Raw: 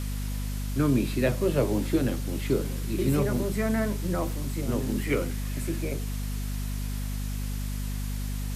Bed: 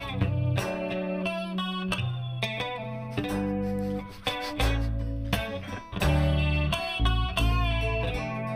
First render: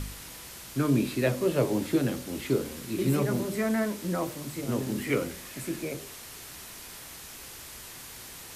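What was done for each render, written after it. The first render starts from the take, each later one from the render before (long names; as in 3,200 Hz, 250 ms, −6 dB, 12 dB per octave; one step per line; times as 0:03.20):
hum removal 50 Hz, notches 12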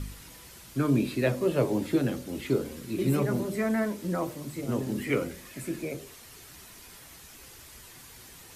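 broadband denoise 7 dB, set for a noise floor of −45 dBFS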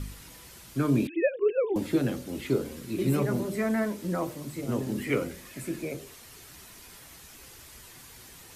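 0:01.07–0:01.76: three sine waves on the formant tracks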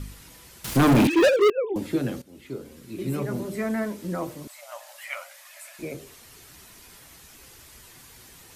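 0:00.64–0:01.50: leveller curve on the samples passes 5
0:02.22–0:03.58: fade in linear, from −15.5 dB
0:04.47–0:05.79: linear-phase brick-wall high-pass 550 Hz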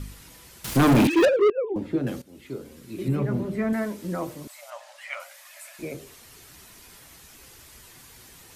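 0:01.25–0:02.07: low-pass filter 1,200 Hz 6 dB per octave
0:03.08–0:03.73: bass and treble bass +6 dB, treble −12 dB
0:04.70–0:05.20: high-frequency loss of the air 58 metres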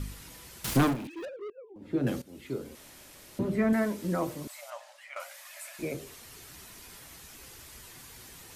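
0:00.69–0:02.07: duck −21.5 dB, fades 0.28 s
0:02.75–0:03.39: fill with room tone
0:04.58–0:05.16: fade out, to −13.5 dB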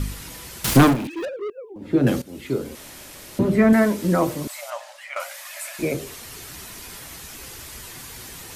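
level +10.5 dB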